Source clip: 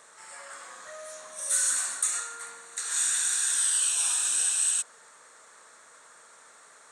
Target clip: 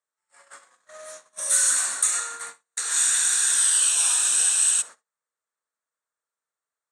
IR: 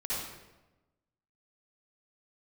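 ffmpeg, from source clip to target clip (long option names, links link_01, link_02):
-filter_complex "[0:a]agate=range=-43dB:threshold=-41dB:ratio=16:detection=peak,asplit=2[link_01][link_02];[1:a]atrim=start_sample=2205,atrim=end_sample=3969,asetrate=48510,aresample=44100[link_03];[link_02][link_03]afir=irnorm=-1:irlink=0,volume=-20.5dB[link_04];[link_01][link_04]amix=inputs=2:normalize=0,volume=5dB"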